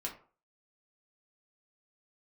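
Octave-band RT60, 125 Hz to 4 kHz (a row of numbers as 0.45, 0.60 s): 0.40, 0.40, 0.40, 0.45, 0.30, 0.20 s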